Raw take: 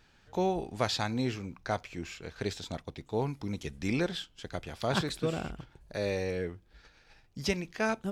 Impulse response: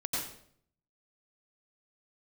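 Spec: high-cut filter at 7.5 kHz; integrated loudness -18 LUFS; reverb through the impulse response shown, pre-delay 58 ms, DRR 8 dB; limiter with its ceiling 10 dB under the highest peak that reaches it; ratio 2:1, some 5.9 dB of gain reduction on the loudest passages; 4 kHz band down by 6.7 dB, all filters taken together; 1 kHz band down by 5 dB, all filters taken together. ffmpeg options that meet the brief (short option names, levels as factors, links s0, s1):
-filter_complex "[0:a]lowpass=7500,equalizer=f=1000:t=o:g=-7,equalizer=f=4000:t=o:g=-7.5,acompressor=threshold=0.0141:ratio=2,alimiter=level_in=2.82:limit=0.0631:level=0:latency=1,volume=0.355,asplit=2[s0][s1];[1:a]atrim=start_sample=2205,adelay=58[s2];[s1][s2]afir=irnorm=-1:irlink=0,volume=0.224[s3];[s0][s3]amix=inputs=2:normalize=0,volume=18.8"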